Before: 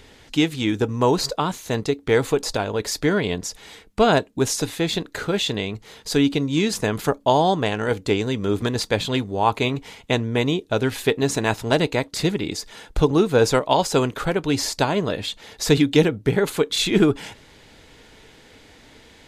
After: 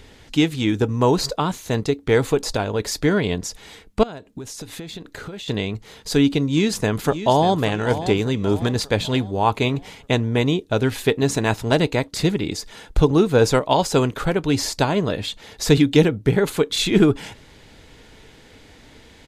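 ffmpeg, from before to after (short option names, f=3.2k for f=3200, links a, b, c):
-filter_complex "[0:a]asettb=1/sr,asplit=3[a][b][c];[a]atrim=end=4.034[d];[b]atrim=start=4.03:end=5.48,asetpts=PTS-STARTPTS,afade=t=in:d=0.004:c=qsin,afade=t=out:st=1.446:d=0.004:c=qsin,acompressor=threshold=-31dB:ratio=16:attack=3.2:release=140:knee=1:detection=peak[e];[c]atrim=start=5.476[f];[d][e]acrossfade=d=0.004:c1=hsin:c2=qsin[g];[g][f]acrossfade=d=0.004:c1=qsin:c2=hsin,asplit=2[h][i];[i]afade=t=in:st=6.46:d=0.01,afade=t=out:st=7.61:d=0.01,aecho=0:1:590|1180|1770|2360|2950:0.266073|0.119733|0.0538797|0.0242459|0.0109106[j];[h][j]amix=inputs=2:normalize=0,lowshelf=f=210:g=5"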